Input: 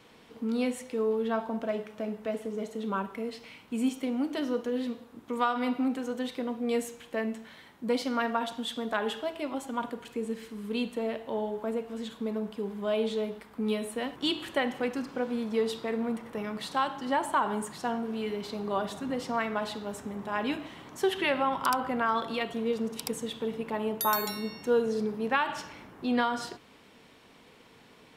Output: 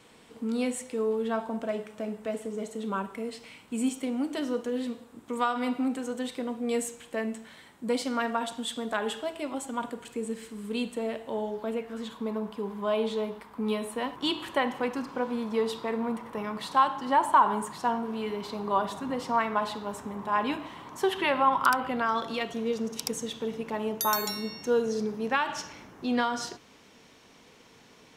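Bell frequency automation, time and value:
bell +9.5 dB 0.5 oct
11.41 s 8100 Hz
12.07 s 1000 Hz
21.58 s 1000 Hz
22.1 s 6100 Hz

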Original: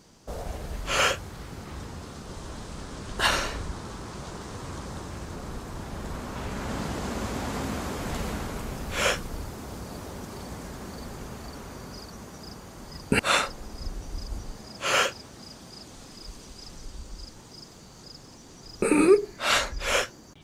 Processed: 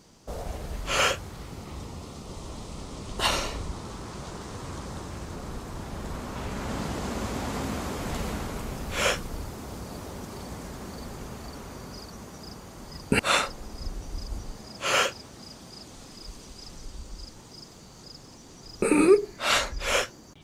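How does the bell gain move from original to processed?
bell 1600 Hz 0.31 oct
1.25 s -2.5 dB
1.81 s -12.5 dB
3.47 s -12.5 dB
4.08 s -2 dB

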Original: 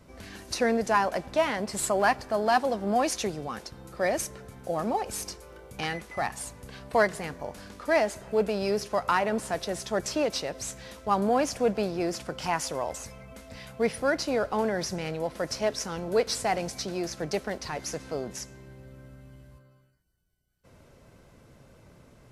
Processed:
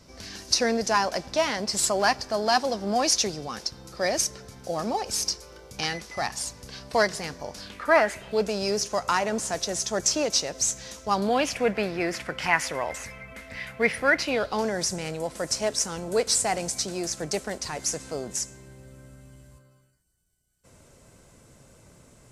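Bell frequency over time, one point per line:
bell +14 dB 0.96 oct
7.59 s 5300 Hz
7.93 s 1100 Hz
8.49 s 6400 Hz
11.02 s 6400 Hz
11.66 s 2000 Hz
14.16 s 2000 Hz
14.79 s 7900 Hz

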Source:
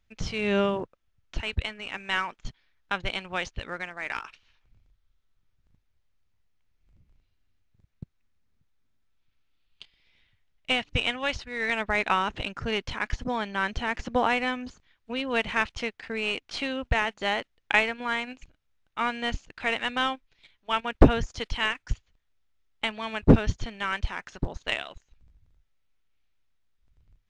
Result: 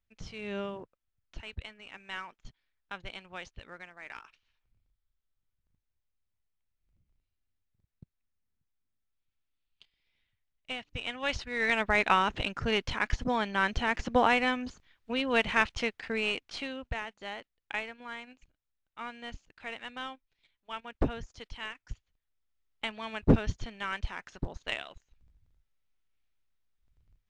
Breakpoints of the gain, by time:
10.97 s -12 dB
11.38 s 0 dB
16.14 s 0 dB
17.11 s -13 dB
21.76 s -13 dB
22.97 s -5.5 dB

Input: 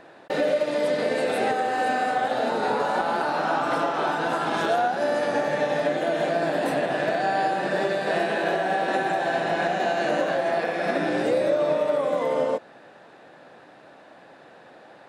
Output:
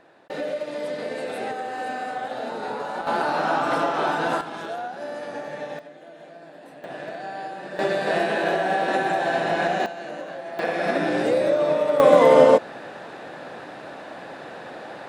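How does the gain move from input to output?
-6 dB
from 3.07 s +1.5 dB
from 4.41 s -9 dB
from 5.79 s -20 dB
from 6.84 s -10 dB
from 7.79 s +1.5 dB
from 9.86 s -10.5 dB
from 10.59 s +1.5 dB
from 12 s +11 dB

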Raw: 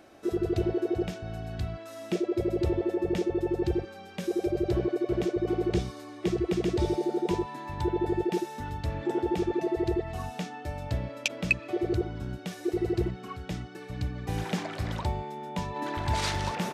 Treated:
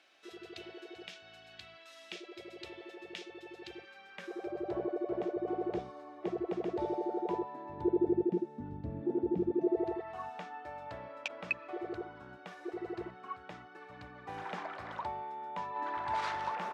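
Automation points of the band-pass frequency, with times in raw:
band-pass, Q 1.4
3.64 s 3100 Hz
4.84 s 740 Hz
7.27 s 740 Hz
8.36 s 240 Hz
9.55 s 240 Hz
10 s 1100 Hz

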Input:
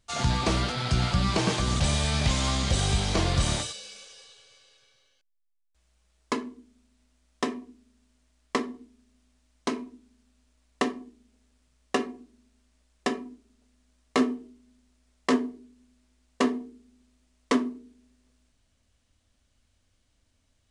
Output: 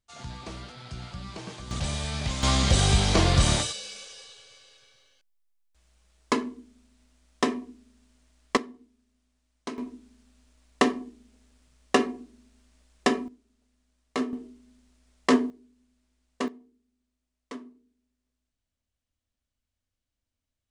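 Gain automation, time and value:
-14.5 dB
from 1.71 s -5.5 dB
from 2.43 s +4 dB
from 8.57 s -7 dB
from 9.78 s +5 dB
from 13.28 s -5.5 dB
from 14.33 s +3 dB
from 15.5 s -6 dB
from 16.48 s -16.5 dB

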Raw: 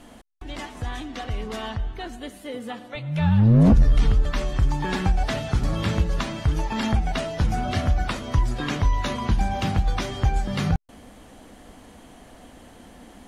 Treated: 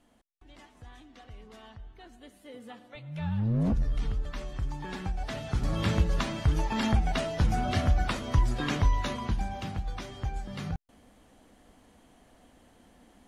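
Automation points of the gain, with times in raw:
1.77 s -18.5 dB
2.63 s -12 dB
5.14 s -12 dB
5.85 s -3 dB
8.84 s -3 dB
9.7 s -12 dB

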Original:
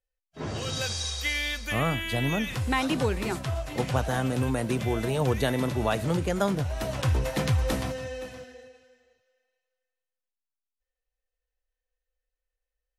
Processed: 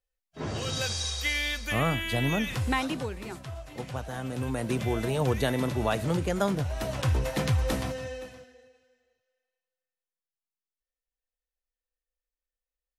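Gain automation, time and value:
2.69 s 0 dB
3.11 s -9 dB
4.12 s -9 dB
4.74 s -1 dB
8.1 s -1 dB
8.51 s -8 dB

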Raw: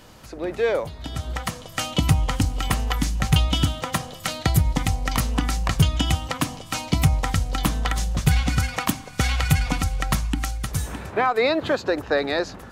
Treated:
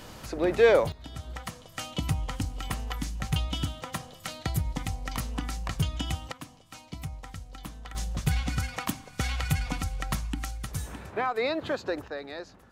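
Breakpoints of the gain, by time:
+2.5 dB
from 0.92 s -10 dB
from 6.32 s -19 dB
from 7.95 s -8 dB
from 12.08 s -15.5 dB

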